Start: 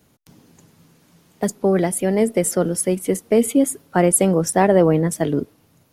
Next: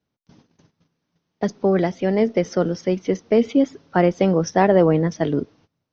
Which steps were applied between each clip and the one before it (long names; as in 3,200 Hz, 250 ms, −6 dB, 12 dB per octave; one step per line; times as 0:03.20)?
noise gate −49 dBFS, range −19 dB
Chebyshev low-pass filter 6,200 Hz, order 8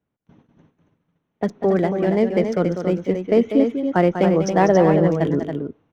adaptive Wiener filter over 9 samples
loudspeakers that aren't time-aligned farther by 67 metres −9 dB, 95 metres −7 dB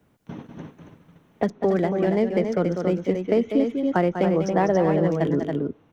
multiband upward and downward compressor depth 70%
level −4 dB